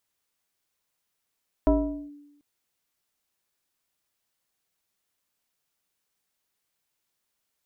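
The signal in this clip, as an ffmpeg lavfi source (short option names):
-f lavfi -i "aevalsrc='0.188*pow(10,-3*t/0.97)*sin(2*PI*290*t+1.3*clip(1-t/0.44,0,1)*sin(2*PI*1.18*290*t))':d=0.74:s=44100"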